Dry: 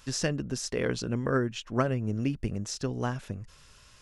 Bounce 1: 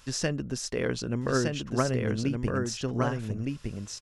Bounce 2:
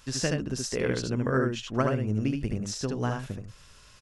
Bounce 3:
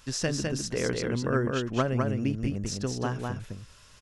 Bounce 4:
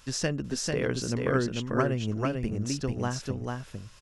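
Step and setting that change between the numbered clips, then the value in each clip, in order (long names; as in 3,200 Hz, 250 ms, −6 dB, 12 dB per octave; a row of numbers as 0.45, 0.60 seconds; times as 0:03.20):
single-tap delay, delay time: 1,213, 75, 206, 444 milliseconds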